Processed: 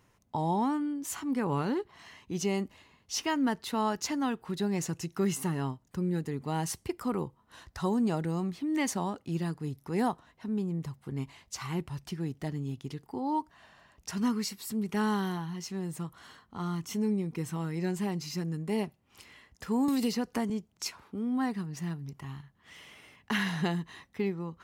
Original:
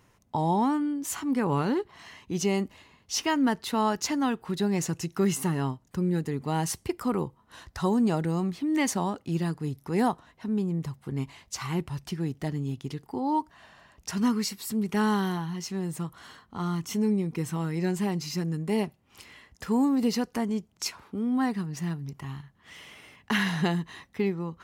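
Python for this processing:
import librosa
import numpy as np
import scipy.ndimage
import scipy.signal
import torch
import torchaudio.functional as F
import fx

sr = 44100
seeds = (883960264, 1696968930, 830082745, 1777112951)

y = fx.band_squash(x, sr, depth_pct=100, at=(19.88, 20.5))
y = F.gain(torch.from_numpy(y), -4.0).numpy()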